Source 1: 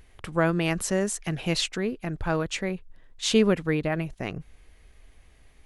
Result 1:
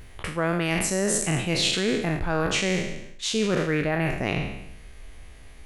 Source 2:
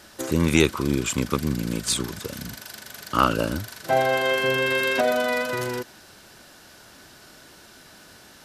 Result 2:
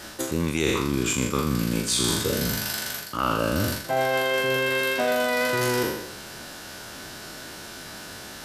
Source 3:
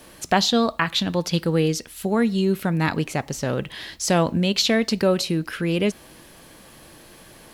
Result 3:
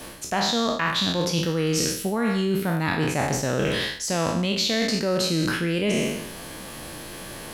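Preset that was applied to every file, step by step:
spectral trails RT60 0.86 s; reverse; compressor 12:1, threshold -27 dBFS; reverse; gain +7 dB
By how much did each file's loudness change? +1.5, -1.0, -1.5 LU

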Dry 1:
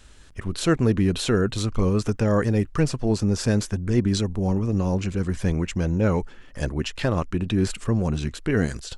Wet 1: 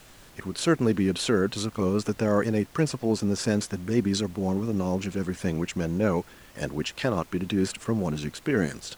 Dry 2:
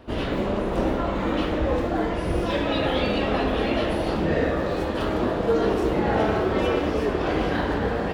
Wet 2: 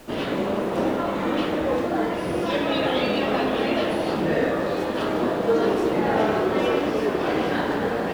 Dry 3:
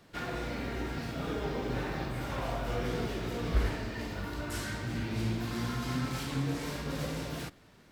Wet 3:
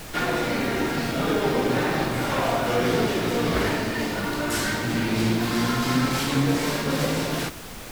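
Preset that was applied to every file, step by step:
HPF 160 Hz 12 dB/oct; added noise pink -51 dBFS; normalise peaks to -9 dBFS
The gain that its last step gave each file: -1.0, +1.5, +12.5 dB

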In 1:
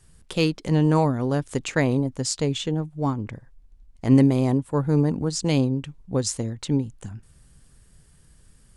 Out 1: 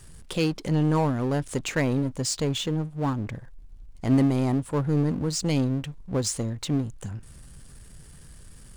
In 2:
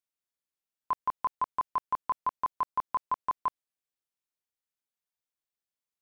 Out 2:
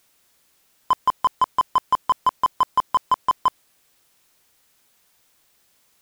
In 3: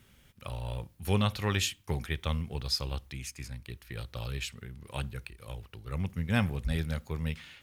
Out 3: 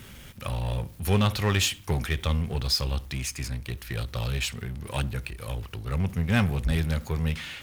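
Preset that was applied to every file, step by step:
power-law curve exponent 0.7; normalise peaks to -12 dBFS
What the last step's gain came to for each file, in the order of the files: -6.5, +10.0, +2.0 dB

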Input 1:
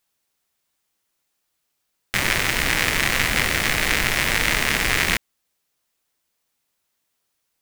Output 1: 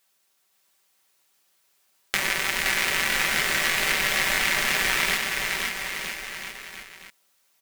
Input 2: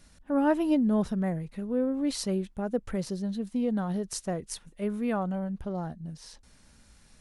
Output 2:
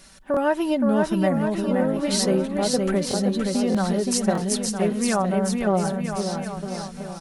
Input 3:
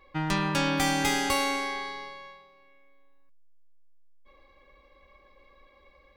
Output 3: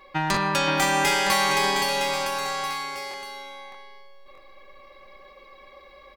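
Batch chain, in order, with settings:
low shelf 230 Hz -12 dB; comb 5.2 ms, depth 48%; compressor 2.5:1, threshold -31 dBFS; on a send: bouncing-ball echo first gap 0.52 s, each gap 0.85×, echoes 5; on the sum: stuck buffer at 0.32/3.09/3.7/4.33, samples 1024, times 1; match loudness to -23 LUFS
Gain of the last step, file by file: +5.5, +11.0, +9.0 dB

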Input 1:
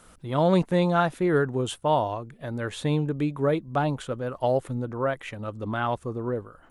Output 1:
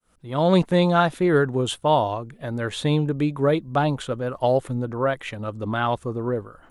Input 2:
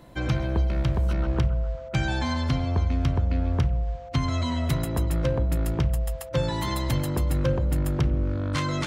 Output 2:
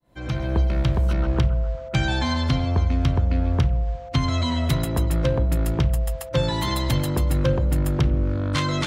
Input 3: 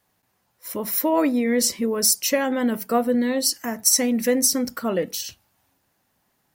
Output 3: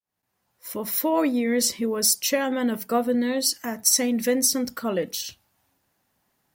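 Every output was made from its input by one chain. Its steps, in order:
opening faded in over 0.56 s; dynamic EQ 3600 Hz, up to +4 dB, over -47 dBFS, Q 2.3; match loudness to -23 LUFS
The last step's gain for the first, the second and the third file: +3.5, +3.0, -2.0 dB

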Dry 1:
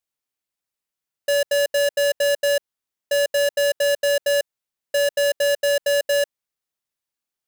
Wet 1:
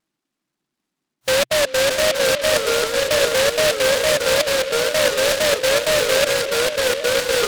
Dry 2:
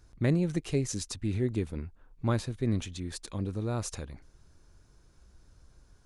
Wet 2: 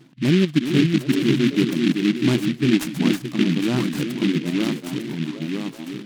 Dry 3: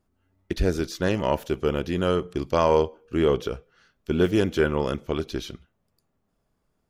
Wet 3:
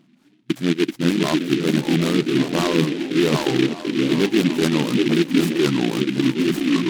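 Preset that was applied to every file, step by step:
echoes that change speed 0.455 s, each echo -2 st, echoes 2, each echo -6 dB; reverb removal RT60 0.89 s; resonant low shelf 380 Hz +6 dB, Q 3; reverse; compressor 6:1, threshold -29 dBFS; reverse; wow and flutter 150 cents; on a send: delay with a stepping band-pass 0.381 s, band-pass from 290 Hz, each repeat 0.7 oct, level -5 dB; on the sum: FFT band-pass 120–3700 Hz; noise-modulated delay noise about 2500 Hz, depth 0.12 ms; normalise peaks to -6 dBFS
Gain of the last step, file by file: +14.0, +14.5, +13.0 dB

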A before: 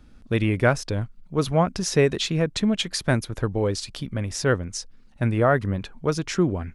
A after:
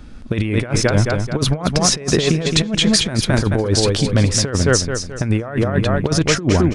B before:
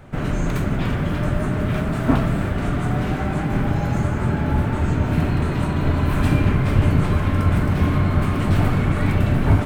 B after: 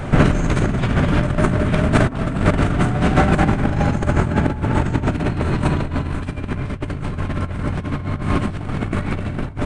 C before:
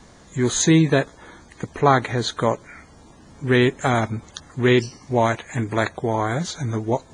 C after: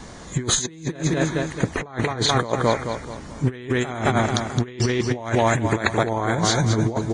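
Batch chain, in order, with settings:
on a send: feedback echo 0.216 s, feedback 39%, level -8 dB; on the sum: downsampling 22050 Hz; negative-ratio compressor -25 dBFS, ratio -0.5; normalise peaks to -1.5 dBFS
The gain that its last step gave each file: +9.5, +8.5, +3.5 dB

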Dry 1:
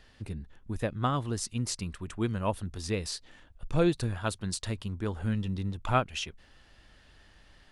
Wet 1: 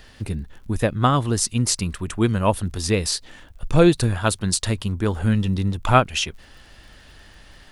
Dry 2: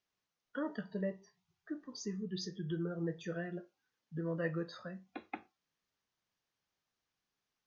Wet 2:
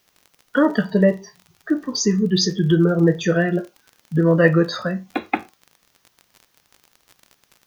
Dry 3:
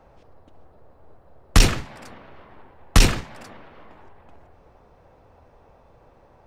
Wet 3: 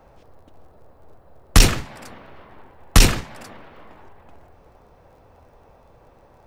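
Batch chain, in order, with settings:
high shelf 9900 Hz +8.5 dB; crackle 39/s -54 dBFS; normalise peaks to -1.5 dBFS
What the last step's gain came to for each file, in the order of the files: +10.5, +22.0, +2.0 dB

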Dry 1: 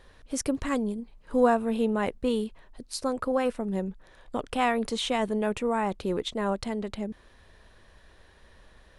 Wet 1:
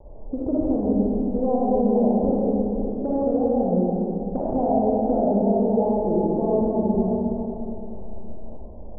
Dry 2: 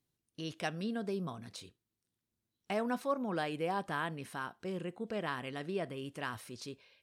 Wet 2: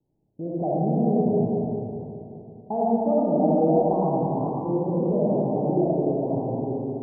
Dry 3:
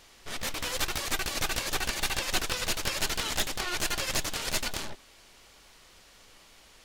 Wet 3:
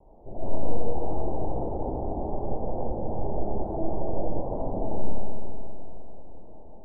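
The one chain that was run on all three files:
steep low-pass 850 Hz 72 dB/oct; compressor, threshold -35 dBFS; wow and flutter 150 cents; digital reverb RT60 3.1 s, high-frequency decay 0.75×, pre-delay 15 ms, DRR -7.5 dB; normalise peaks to -9 dBFS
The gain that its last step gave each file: +9.0, +10.0, +4.5 dB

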